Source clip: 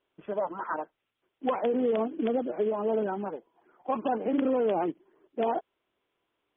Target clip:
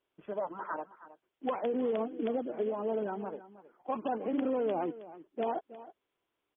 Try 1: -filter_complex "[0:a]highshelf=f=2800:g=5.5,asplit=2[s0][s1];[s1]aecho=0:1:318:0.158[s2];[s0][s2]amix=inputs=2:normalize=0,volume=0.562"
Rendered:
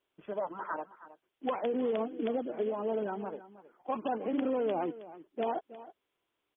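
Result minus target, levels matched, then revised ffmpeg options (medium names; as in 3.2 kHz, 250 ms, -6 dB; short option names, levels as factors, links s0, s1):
4 kHz band +3.0 dB
-filter_complex "[0:a]asplit=2[s0][s1];[s1]aecho=0:1:318:0.158[s2];[s0][s2]amix=inputs=2:normalize=0,volume=0.562"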